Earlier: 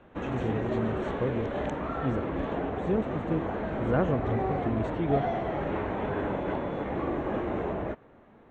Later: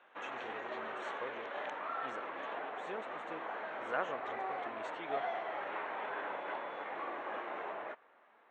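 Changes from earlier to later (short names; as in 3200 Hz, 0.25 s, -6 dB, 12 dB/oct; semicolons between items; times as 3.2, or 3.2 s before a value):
background: add air absorption 150 m; master: add HPF 990 Hz 12 dB/oct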